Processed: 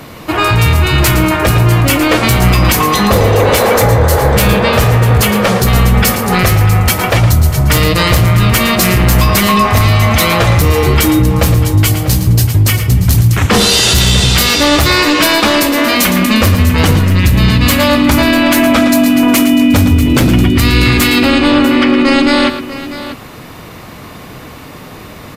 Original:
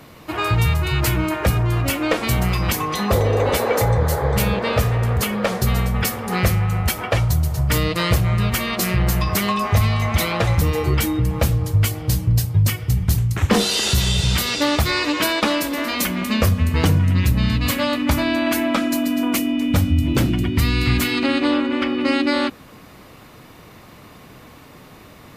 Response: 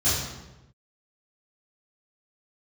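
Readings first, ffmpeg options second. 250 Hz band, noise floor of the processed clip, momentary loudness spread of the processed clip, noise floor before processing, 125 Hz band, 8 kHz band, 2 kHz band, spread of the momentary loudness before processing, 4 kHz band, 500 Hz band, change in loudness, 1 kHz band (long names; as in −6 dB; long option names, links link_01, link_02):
+10.5 dB, −31 dBFS, 2 LU, −44 dBFS, +9.0 dB, +11.0 dB, +11.0 dB, 3 LU, +11.0 dB, +9.5 dB, +10.0 dB, +11.0 dB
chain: -filter_complex "[0:a]apsyclip=17dB,asplit=2[link_01][link_02];[link_02]aecho=0:1:113|645:0.316|0.211[link_03];[link_01][link_03]amix=inputs=2:normalize=0,volume=-5dB"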